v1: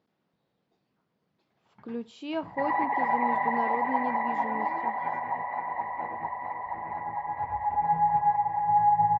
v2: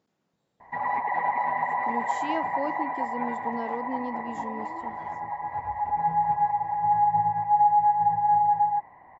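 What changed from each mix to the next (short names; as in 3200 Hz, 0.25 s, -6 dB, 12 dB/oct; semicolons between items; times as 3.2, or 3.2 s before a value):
background: entry -1.85 s; master: remove LPF 4800 Hz 24 dB/oct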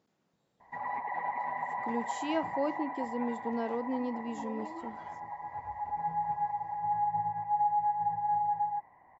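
background -8.5 dB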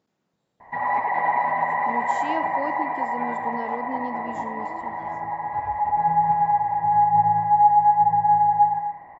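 background +9.0 dB; reverb: on, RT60 0.65 s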